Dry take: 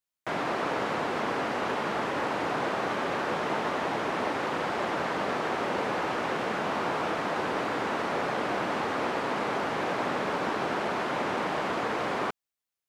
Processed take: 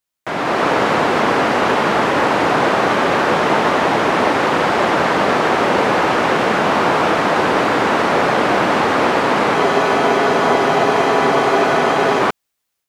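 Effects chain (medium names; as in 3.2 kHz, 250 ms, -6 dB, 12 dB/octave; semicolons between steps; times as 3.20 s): level rider gain up to 7 dB; spectral freeze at 9.57 s, 2.64 s; trim +7.5 dB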